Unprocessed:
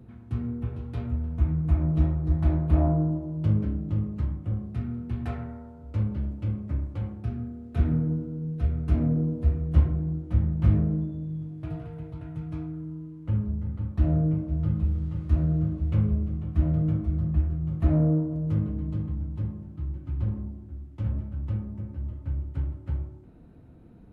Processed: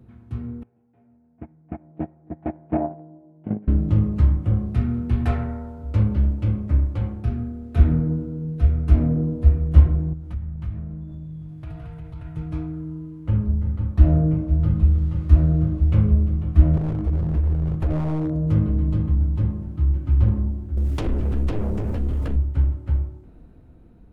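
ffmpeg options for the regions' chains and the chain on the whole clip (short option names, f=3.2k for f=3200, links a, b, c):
-filter_complex "[0:a]asettb=1/sr,asplit=3[a][b][c];[a]atrim=end=0.634[d];[b]atrim=start=0.63:end=3.68,asetpts=PTS-STARTPTS,afade=t=in:d=0.004:c=qsin,afade=t=out:st=3.046:d=0.004:c=qsin,agate=range=-23dB:threshold=-20dB:ratio=16:release=100:detection=peak,highpass=f=140:w=0.5412,highpass=f=140:w=1.3066,equalizer=f=150:t=q:w=4:g=-6,equalizer=f=220:t=q:w=4:g=4,equalizer=f=740:t=q:w=4:g=9,equalizer=f=1.2k:t=q:w=4:g=-8,lowpass=f=2.3k:w=0.5412,lowpass=f=2.3k:w=1.3066[e];[c]atrim=start=3.676[f];[d][e]acrossfade=d=0.004:c1=hsin:c2=qsin[g];[g][f]acrossfade=d=0.004:c1=qsin:c2=hsin,asettb=1/sr,asplit=3[h][i][j];[h]atrim=end=10.134[k];[i]atrim=start=10.13:end=12.37,asetpts=PTS-STARTPTS,afade=t=in:d=0.004:c=qsin,afade=t=out:st=2.236:d=0.004:c=qsin,equalizer=f=390:w=1.1:g=-10,acompressor=threshold=-36dB:ratio=3:attack=3.2:release=140:knee=1:detection=peak[l];[j]atrim=start=12.366[m];[k][l]acrossfade=d=0.004:c1=hsin:c2=qsin[n];[n][m]acrossfade=d=0.004:c1=qsin:c2=hsin,asettb=1/sr,asplit=3[o][p][q];[o]atrim=end=16.774[r];[p]atrim=start=16.77:end=18.31,asetpts=PTS-STARTPTS,afade=t=in:d=0.004:c=qsin,afade=t=out:st=1.536:d=0.004:c=qsin,acompressor=threshold=-24dB:ratio=12:attack=3.2:release=140:knee=1:detection=peak,aeval=exprs='0.0596*(abs(mod(val(0)/0.0596+3,4)-2)-1)':c=same[s];[q]atrim=start=18.306[t];[r][s]acrossfade=d=0.004:c1=hsin:c2=qsin[u];[u][t]acrossfade=d=0.004:c1=qsin:c2=hsin,asettb=1/sr,asplit=3[v][w][x];[v]atrim=end=20.774[y];[w]atrim=start=20.77:end=22.36,asetpts=PTS-STARTPTS,afade=t=in:d=0.004:c=qsin,afade=t=out:st=1.586:d=0.004:c=qsin,highshelf=f=2.2k:g=11,acompressor=threshold=-39dB:ratio=3:attack=3.2:release=140:knee=1:detection=peak,aeval=exprs='0.0282*sin(PI/2*2.82*val(0)/0.0282)':c=same[z];[x]atrim=start=22.356[aa];[y][z]acrossfade=d=0.004:c1=hsin:c2=qsin[ab];[ab][aa]acrossfade=d=0.004:c1=qsin:c2=hsin,asubboost=boost=3:cutoff=55,dynaudnorm=f=480:g=9:m=10.5dB,equalizer=f=73:t=o:w=0.77:g=2,volume=-1dB"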